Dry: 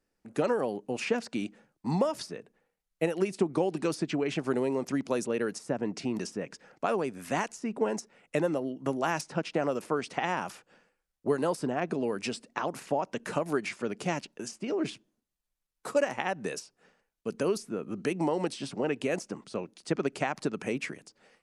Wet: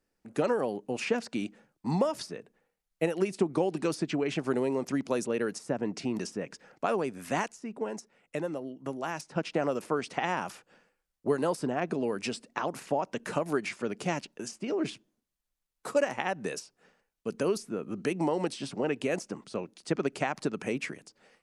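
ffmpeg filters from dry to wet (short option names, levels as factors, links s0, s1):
-filter_complex "[0:a]asplit=3[s0][s1][s2];[s0]atrim=end=7.482[s3];[s1]atrim=start=7.478:end=9.362,asetpts=PTS-STARTPTS,volume=0.531[s4];[s2]atrim=start=9.358[s5];[s3][s4]acrossfade=d=0.004:c1=hsin:c2=hsin[s6];[s6][s5]acrossfade=d=0.004:c1=hsin:c2=hsin"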